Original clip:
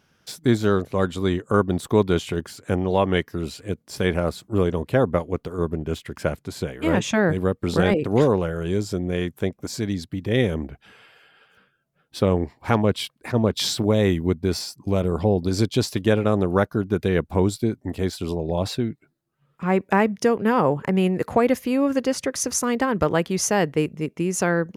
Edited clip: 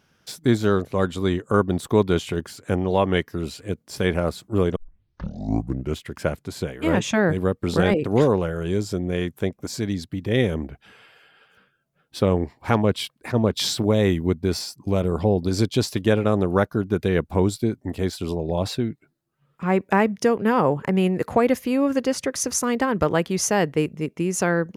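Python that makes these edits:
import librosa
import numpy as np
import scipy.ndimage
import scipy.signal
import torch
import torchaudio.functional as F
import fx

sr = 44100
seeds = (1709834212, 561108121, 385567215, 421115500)

y = fx.edit(x, sr, fx.tape_start(start_s=4.76, length_s=1.22), tone=tone)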